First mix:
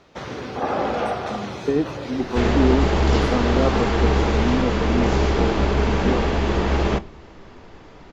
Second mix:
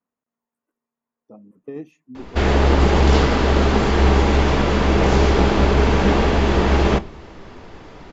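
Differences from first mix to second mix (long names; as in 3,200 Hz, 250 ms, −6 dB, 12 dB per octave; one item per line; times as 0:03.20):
speech −12.0 dB
first sound: muted
second sound +4.0 dB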